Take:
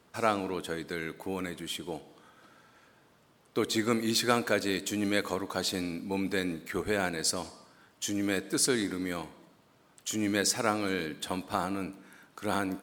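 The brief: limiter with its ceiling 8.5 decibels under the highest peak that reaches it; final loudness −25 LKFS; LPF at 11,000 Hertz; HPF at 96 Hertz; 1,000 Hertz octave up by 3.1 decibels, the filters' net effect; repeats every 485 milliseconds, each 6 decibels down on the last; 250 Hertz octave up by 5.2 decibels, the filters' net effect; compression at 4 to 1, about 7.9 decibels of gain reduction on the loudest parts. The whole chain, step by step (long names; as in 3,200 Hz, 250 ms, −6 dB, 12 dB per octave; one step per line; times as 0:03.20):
high-pass filter 96 Hz
low-pass filter 11,000 Hz
parametric band 250 Hz +6.5 dB
parametric band 1,000 Hz +4 dB
downward compressor 4 to 1, threshold −28 dBFS
brickwall limiter −23 dBFS
repeating echo 485 ms, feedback 50%, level −6 dB
level +9 dB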